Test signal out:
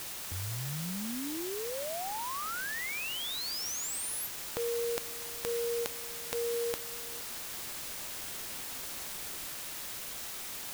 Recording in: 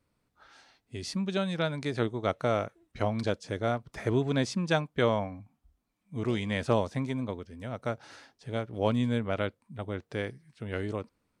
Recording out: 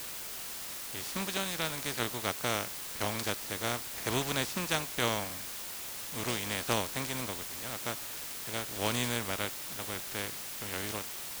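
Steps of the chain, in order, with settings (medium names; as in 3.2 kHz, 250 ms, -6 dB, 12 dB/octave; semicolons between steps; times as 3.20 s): spectral contrast reduction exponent 0.41; word length cut 6-bit, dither triangular; trim -5 dB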